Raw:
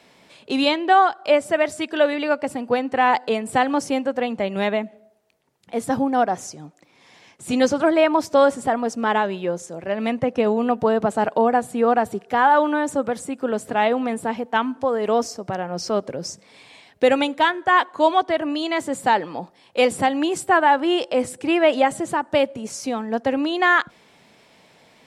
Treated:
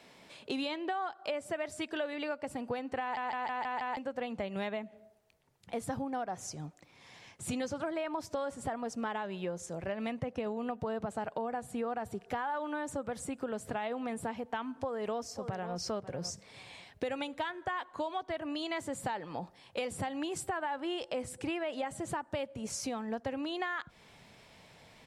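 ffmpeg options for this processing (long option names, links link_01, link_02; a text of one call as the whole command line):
ffmpeg -i in.wav -filter_complex "[0:a]asplit=2[link_01][link_02];[link_02]afade=type=in:start_time=14.75:duration=0.01,afade=type=out:start_time=15.76:duration=0.01,aecho=0:1:540|1080:0.188365|0.0282547[link_03];[link_01][link_03]amix=inputs=2:normalize=0,asplit=7[link_04][link_05][link_06][link_07][link_08][link_09][link_10];[link_04]atrim=end=3.172[link_11];[link_05]atrim=start=3.008:end=3.172[link_12];[link_06]atrim=start=3.008:end=3.172[link_13];[link_07]atrim=start=3.008:end=3.172[link_14];[link_08]atrim=start=3.008:end=3.172[link_15];[link_09]atrim=start=3.008:end=3.172[link_16];[link_10]atrim=start=3.968[link_17];[link_11][link_12]acrossfade=duration=0.004:curve1=hsin:curve2=hsin[link_18];[link_18][link_13]acrossfade=duration=0.004:curve1=hsin:curve2=hsin[link_19];[link_19][link_14]acrossfade=duration=0.004:curve1=hsin:curve2=hsin[link_20];[link_20][link_15]acrossfade=duration=0.004:curve1=hsin:curve2=hsin[link_21];[link_21][link_16]acrossfade=duration=0.004:curve1=hsin:curve2=hsin[link_22];[link_22][link_17]acrossfade=duration=0.004:curve1=hsin:curve2=hsin,asubboost=boost=4:cutoff=120,alimiter=limit=-10.5dB:level=0:latency=1,acompressor=threshold=-30dB:ratio=5,volume=-4dB" out.wav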